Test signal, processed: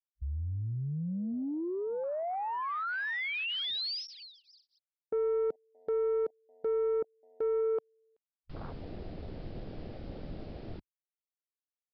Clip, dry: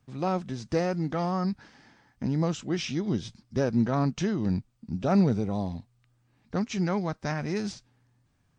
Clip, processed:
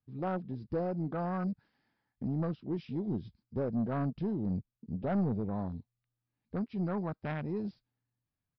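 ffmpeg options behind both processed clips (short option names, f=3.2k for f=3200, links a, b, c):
-af "afwtdn=0.02,aresample=11025,asoftclip=type=tanh:threshold=-21.5dB,aresample=44100,volume=-4dB"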